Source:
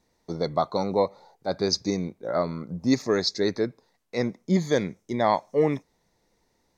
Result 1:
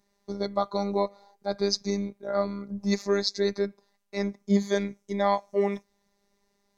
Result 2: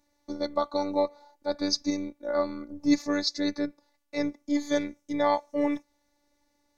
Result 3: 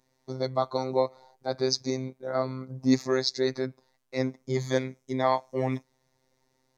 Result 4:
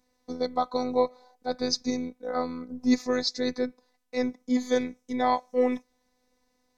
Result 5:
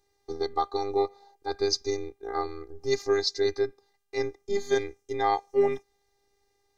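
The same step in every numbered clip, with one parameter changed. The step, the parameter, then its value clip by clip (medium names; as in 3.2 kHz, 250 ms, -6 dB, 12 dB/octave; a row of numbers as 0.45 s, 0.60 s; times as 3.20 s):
robot voice, frequency: 200 Hz, 290 Hz, 130 Hz, 250 Hz, 400 Hz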